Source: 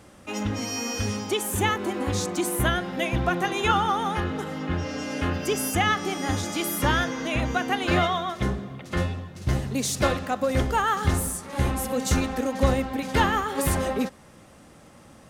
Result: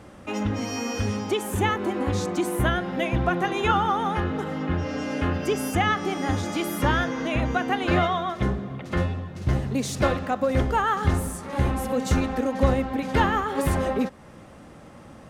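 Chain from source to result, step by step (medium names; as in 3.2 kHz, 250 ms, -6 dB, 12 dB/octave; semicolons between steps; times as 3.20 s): treble shelf 3.6 kHz -10.5 dB; in parallel at -2 dB: compression, threshold -35 dBFS, peak gain reduction 19 dB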